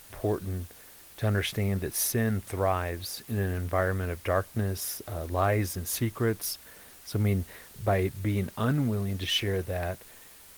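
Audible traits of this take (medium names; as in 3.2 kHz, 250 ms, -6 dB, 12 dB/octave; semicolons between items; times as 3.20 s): a quantiser's noise floor 8-bit, dither triangular; Opus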